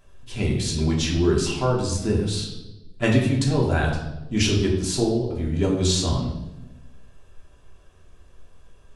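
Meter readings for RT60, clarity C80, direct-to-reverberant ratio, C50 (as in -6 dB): 1.0 s, 7.5 dB, -3.0 dB, 5.0 dB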